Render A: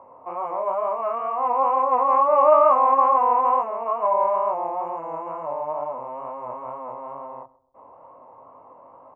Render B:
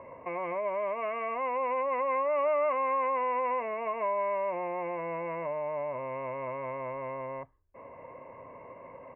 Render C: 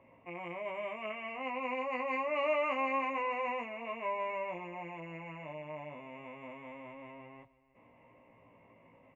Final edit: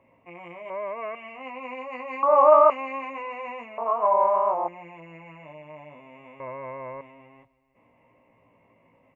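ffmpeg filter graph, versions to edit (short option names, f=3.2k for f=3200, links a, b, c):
-filter_complex "[1:a]asplit=2[a][b];[0:a]asplit=2[c][d];[2:a]asplit=5[e][f][g][h][i];[e]atrim=end=0.702[j];[a]atrim=start=0.698:end=1.152[k];[f]atrim=start=1.148:end=2.232[l];[c]atrim=start=2.228:end=2.702[m];[g]atrim=start=2.698:end=3.782[n];[d]atrim=start=3.778:end=4.682[o];[h]atrim=start=4.678:end=6.402[p];[b]atrim=start=6.398:end=7.012[q];[i]atrim=start=7.008[r];[j][k]acrossfade=d=0.004:c1=hsin:c2=hsin[s];[s][l]acrossfade=d=0.004:c1=hsin:c2=hsin[t];[t][m]acrossfade=d=0.004:c1=hsin:c2=hsin[u];[u][n]acrossfade=d=0.004:c1=hsin:c2=hsin[v];[v][o]acrossfade=d=0.004:c1=hsin:c2=hsin[w];[w][p]acrossfade=d=0.004:c1=hsin:c2=hsin[x];[x][q]acrossfade=d=0.004:c1=hsin:c2=hsin[y];[y][r]acrossfade=d=0.004:c1=hsin:c2=hsin"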